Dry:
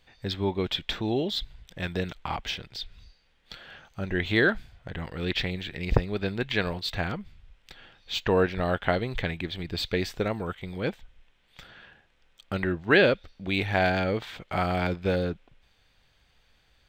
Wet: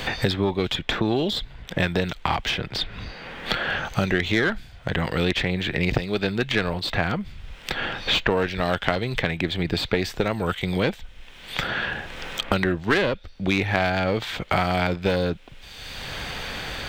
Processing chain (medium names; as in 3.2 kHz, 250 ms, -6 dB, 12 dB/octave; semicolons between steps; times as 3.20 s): single-diode clipper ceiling -23 dBFS; three bands compressed up and down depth 100%; trim +6 dB